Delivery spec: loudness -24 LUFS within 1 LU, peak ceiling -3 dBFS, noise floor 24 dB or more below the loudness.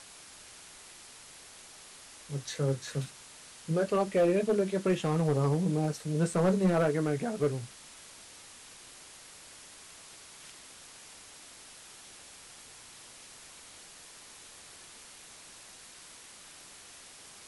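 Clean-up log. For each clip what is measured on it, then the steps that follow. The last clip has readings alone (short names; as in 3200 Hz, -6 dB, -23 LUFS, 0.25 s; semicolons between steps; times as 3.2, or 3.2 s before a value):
clipped 0.5%; flat tops at -20.0 dBFS; noise floor -52 dBFS; noise floor target -54 dBFS; loudness -29.5 LUFS; peak -20.0 dBFS; loudness target -24.0 LUFS
-> clip repair -20 dBFS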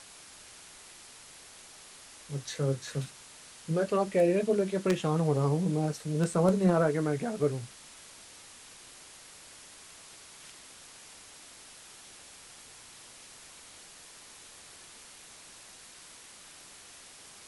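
clipped 0.0%; noise floor -52 dBFS; noise floor target -53 dBFS
-> denoiser 6 dB, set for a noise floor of -52 dBFS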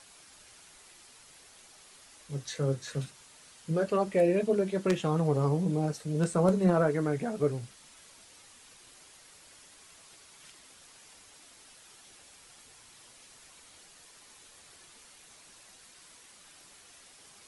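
noise floor -56 dBFS; loudness -29.0 LUFS; peak -11.0 dBFS; loudness target -24.0 LUFS
-> gain +5 dB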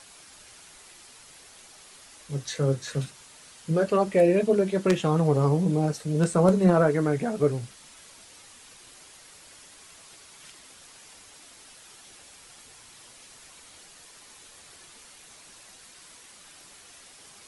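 loudness -24.0 LUFS; peak -6.0 dBFS; noise floor -51 dBFS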